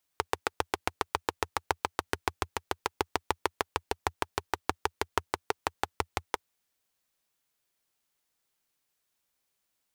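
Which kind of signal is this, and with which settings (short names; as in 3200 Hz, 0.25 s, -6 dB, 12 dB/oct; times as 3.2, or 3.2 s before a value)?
single-cylinder engine model, changing speed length 6.21 s, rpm 900, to 700, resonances 85/420/840 Hz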